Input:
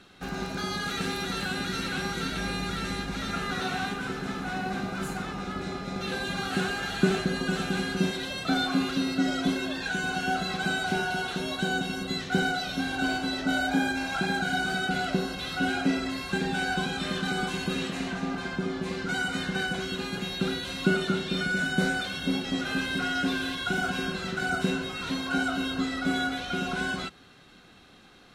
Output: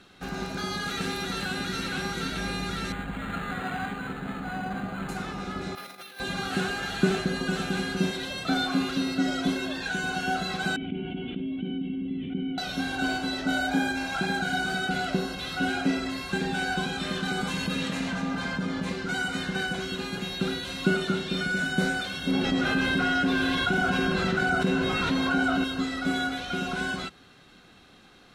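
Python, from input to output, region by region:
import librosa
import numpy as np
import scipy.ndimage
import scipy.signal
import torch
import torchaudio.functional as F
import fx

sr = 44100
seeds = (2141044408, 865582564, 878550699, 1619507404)

y = fx.chain(x, sr, fx.peak_eq(hz=370.0, db=-8.0, octaves=0.25),
    fx.resample_linear(factor=8), at=(2.92, 5.09))
y = fx.chain(y, sr, fx.over_compress(threshold_db=-36.0, ratio=-0.5),
    fx.highpass(hz=1300.0, slope=6),
    fx.resample_bad(factor=3, down='filtered', up='hold'), at=(5.75, 6.2))
y = fx.chain(y, sr, fx.formant_cascade(vowel='i'),
    fx.air_absorb(metres=150.0),
    fx.env_flatten(amount_pct=70), at=(10.76, 12.58))
y = fx.chain(y, sr, fx.notch_comb(f0_hz=370.0),
    fx.env_flatten(amount_pct=50), at=(17.41, 18.93))
y = fx.chain(y, sr, fx.high_shelf(hz=3600.0, db=-9.5),
    fx.env_flatten(amount_pct=70), at=(22.31, 25.64))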